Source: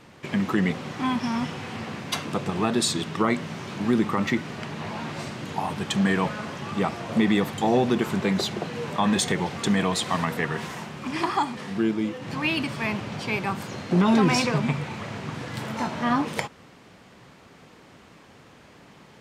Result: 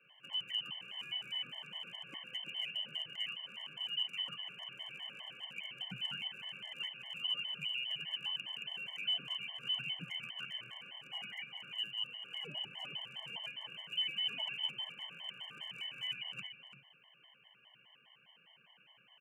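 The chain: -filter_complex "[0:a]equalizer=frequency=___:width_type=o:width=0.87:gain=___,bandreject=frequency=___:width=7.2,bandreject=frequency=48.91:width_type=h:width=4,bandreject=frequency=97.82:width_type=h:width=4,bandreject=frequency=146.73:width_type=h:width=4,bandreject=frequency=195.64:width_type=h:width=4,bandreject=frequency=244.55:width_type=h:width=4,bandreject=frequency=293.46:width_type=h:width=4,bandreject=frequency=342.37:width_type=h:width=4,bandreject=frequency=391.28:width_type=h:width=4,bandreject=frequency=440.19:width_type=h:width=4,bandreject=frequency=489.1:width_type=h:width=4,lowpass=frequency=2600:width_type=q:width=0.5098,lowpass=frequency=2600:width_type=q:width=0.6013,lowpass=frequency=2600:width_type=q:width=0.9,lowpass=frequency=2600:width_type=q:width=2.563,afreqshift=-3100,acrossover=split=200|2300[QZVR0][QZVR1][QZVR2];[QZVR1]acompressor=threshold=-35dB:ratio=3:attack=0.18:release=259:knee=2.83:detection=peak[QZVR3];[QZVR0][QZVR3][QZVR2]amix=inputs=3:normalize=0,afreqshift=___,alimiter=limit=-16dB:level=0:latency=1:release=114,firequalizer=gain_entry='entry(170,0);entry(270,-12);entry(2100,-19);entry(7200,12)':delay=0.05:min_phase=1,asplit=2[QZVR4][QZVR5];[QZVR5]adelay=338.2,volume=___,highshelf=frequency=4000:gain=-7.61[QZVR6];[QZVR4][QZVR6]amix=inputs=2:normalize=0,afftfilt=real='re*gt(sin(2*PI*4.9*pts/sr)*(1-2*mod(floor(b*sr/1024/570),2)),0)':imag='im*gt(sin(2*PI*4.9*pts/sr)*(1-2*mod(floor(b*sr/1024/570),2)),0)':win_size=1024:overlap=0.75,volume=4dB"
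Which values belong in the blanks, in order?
1700, 3.5, 1900, 120, -9dB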